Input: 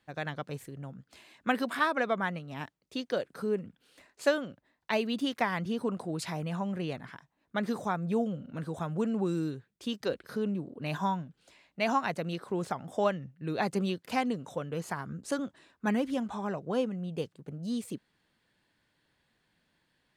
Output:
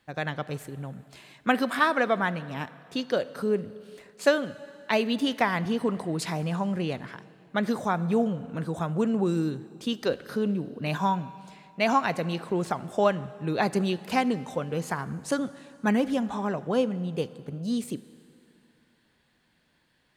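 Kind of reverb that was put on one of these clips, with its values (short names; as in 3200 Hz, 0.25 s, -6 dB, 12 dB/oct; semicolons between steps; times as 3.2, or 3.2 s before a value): plate-style reverb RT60 2.6 s, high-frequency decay 0.9×, DRR 16 dB; gain +5 dB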